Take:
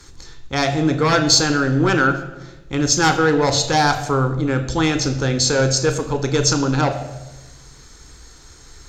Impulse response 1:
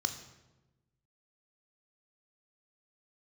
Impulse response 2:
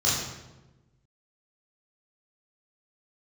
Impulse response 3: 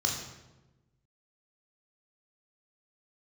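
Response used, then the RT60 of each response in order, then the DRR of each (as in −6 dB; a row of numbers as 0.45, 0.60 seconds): 1; 1.1, 1.1, 1.1 seconds; 7.5, −8.5, −0.5 decibels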